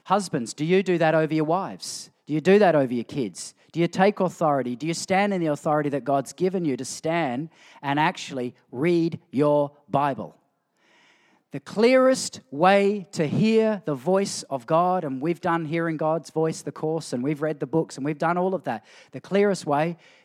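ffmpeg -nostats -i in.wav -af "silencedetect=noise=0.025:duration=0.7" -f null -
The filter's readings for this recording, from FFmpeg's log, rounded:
silence_start: 10.26
silence_end: 11.54 | silence_duration: 1.28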